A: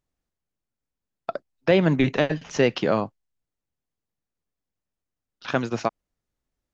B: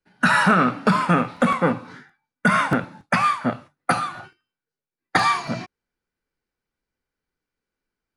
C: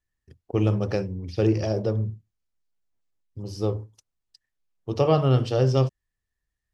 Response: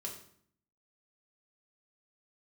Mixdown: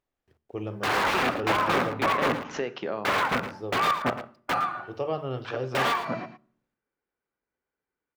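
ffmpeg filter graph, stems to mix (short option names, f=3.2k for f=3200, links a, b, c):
-filter_complex "[0:a]acompressor=threshold=-30dB:ratio=4,volume=0dB,asplit=2[a][b];[b]volume=-8dB[c];[1:a]aeval=exprs='(mod(5.31*val(0)+1,2)-1)/5.31':c=same,highpass=45,highshelf=f=3.1k:g=-11.5,adelay=600,volume=-0.5dB,asplit=3[d][e][f];[e]volume=-13.5dB[g];[f]volume=-10.5dB[h];[2:a]acrusher=bits=9:mix=0:aa=0.000001,volume=-8.5dB,asplit=3[i][j][k];[j]volume=-15dB[l];[k]apad=whole_len=297170[m];[a][m]sidechaincompress=threshold=-33dB:ratio=8:attack=16:release=359[n];[3:a]atrim=start_sample=2205[o];[c][g][l]amix=inputs=3:normalize=0[p];[p][o]afir=irnorm=-1:irlink=0[q];[h]aecho=0:1:112:1[r];[n][d][i][q][r]amix=inputs=5:normalize=0,bass=f=250:g=-9,treble=f=4k:g=-11,bandreject=f=74.37:t=h:w=4,bandreject=f=148.74:t=h:w=4,bandreject=f=223.11:t=h:w=4"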